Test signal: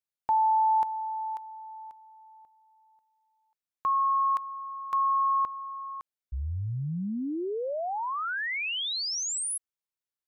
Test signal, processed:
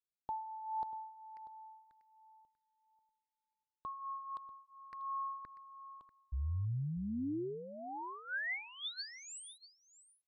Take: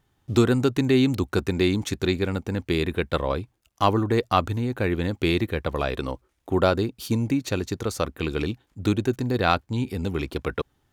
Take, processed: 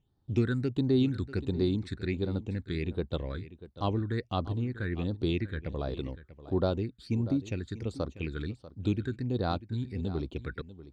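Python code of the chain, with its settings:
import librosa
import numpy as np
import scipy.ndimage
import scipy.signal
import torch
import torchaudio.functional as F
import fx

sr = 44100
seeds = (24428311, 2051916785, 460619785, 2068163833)

y = fx.phaser_stages(x, sr, stages=8, low_hz=760.0, high_hz=2400.0, hz=1.4, feedback_pct=50)
y = fx.air_absorb(y, sr, metres=110.0)
y = y + 10.0 ** (-15.5 / 20.0) * np.pad(y, (int(641 * sr / 1000.0), 0))[:len(y)]
y = y * 10.0 ** (-7.5 / 20.0)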